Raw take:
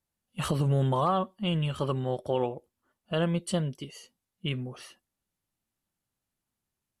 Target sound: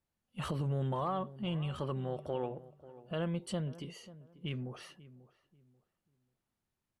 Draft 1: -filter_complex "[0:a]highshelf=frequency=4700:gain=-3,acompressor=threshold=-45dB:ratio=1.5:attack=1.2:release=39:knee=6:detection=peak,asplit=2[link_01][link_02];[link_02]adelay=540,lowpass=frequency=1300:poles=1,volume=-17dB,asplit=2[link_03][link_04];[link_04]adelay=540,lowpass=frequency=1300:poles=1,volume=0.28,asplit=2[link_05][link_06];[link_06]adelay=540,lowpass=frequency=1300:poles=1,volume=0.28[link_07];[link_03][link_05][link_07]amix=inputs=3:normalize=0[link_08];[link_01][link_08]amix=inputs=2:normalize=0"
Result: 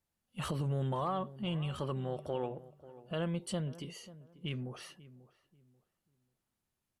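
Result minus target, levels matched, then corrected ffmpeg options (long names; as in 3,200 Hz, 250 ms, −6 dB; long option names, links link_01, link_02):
8,000 Hz band +4.0 dB
-filter_complex "[0:a]highshelf=frequency=4700:gain=-9.5,acompressor=threshold=-45dB:ratio=1.5:attack=1.2:release=39:knee=6:detection=peak,asplit=2[link_01][link_02];[link_02]adelay=540,lowpass=frequency=1300:poles=1,volume=-17dB,asplit=2[link_03][link_04];[link_04]adelay=540,lowpass=frequency=1300:poles=1,volume=0.28,asplit=2[link_05][link_06];[link_06]adelay=540,lowpass=frequency=1300:poles=1,volume=0.28[link_07];[link_03][link_05][link_07]amix=inputs=3:normalize=0[link_08];[link_01][link_08]amix=inputs=2:normalize=0"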